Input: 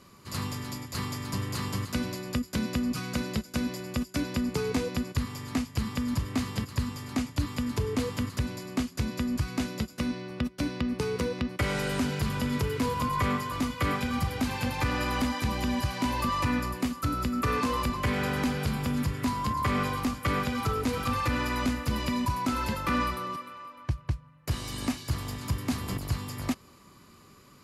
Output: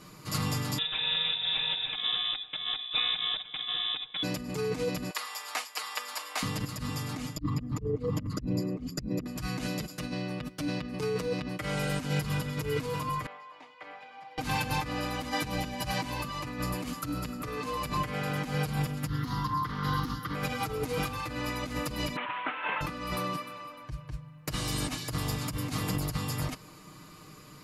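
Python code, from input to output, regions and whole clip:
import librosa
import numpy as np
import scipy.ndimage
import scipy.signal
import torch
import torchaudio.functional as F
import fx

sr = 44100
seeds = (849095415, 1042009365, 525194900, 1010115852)

y = fx.chain(x, sr, fx.freq_invert(carrier_hz=3700),
    fx.band_squash(depth_pct=40), at=(0.78, 4.23))
y = fx.chain(y, sr, fx.highpass(hz=660.0, slope=24),
    fx.notch(hz=6300.0, q=20.0), at=(5.1, 6.43))
y = fx.chain(y, sr, fx.envelope_sharpen(power=2.0),
    fx.over_compress(threshold_db=-34.0, ratio=-0.5), at=(7.36, 9.26))
y = fx.chain(y, sr, fx.ladder_bandpass(hz=1100.0, resonance_pct=45),
    fx.peak_eq(hz=1200.0, db=-14.5, octaves=0.86), at=(13.26, 14.38))
y = fx.chain(y, sr, fx.fixed_phaser(hz=2400.0, stages=6),
    fx.doppler_dist(depth_ms=0.2), at=(19.07, 20.35))
y = fx.chain(y, sr, fx.cvsd(bps=16000),
    fx.highpass(hz=620.0, slope=12),
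    fx.peak_eq(hz=1400.0, db=4.0, octaves=1.6), at=(22.16, 22.81))
y = fx.over_compress(y, sr, threshold_db=-33.0, ratio=-1.0)
y = y + 0.77 * np.pad(y, (int(6.5 * sr / 1000.0), 0))[:len(y)]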